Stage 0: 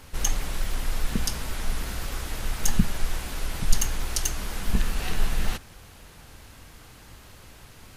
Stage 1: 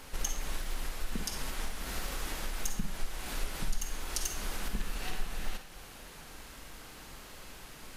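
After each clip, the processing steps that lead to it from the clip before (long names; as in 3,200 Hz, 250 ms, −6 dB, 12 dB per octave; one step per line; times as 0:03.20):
parametric band 93 Hz −12 dB 1.2 octaves
downward compressor 3 to 1, threshold −32 dBFS, peak gain reduction 16.5 dB
convolution reverb RT60 0.45 s, pre-delay 41 ms, DRR 6 dB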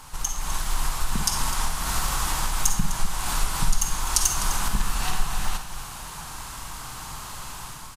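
automatic gain control gain up to 7.5 dB
octave-band graphic EQ 125/250/500/1,000/2,000/8,000 Hz +7/−5/−10/+11/−5/+6 dB
single-tap delay 253 ms −13 dB
level +2.5 dB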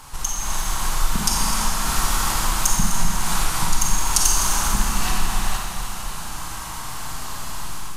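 four-comb reverb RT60 2.5 s, combs from 28 ms, DRR 0.5 dB
level +2 dB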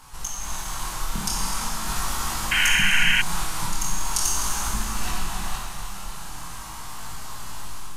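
chorus effect 0.41 Hz, delay 18.5 ms, depth 7.3 ms
sound drawn into the spectrogram noise, 0:02.51–0:03.22, 1,400–3,200 Hz −18 dBFS
level −2.5 dB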